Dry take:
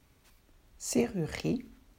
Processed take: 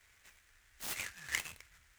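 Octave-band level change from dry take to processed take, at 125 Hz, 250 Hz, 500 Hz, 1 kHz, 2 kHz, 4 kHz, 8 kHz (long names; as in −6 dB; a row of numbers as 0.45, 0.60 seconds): −21.5, −30.0, −25.5, −4.5, +4.5, +0.5, −4.0 decibels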